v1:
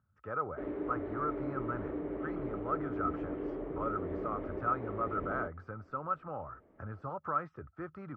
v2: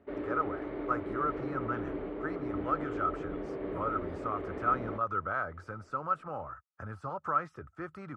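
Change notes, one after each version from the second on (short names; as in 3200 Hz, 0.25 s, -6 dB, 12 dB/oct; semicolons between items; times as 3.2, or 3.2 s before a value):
background: entry -0.50 s; master: remove tape spacing loss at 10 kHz 28 dB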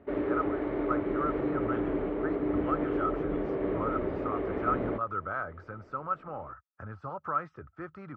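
background +7.0 dB; master: add air absorption 170 m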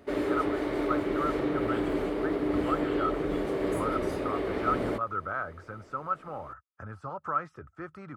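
background: remove air absorption 450 m; master: remove air absorption 170 m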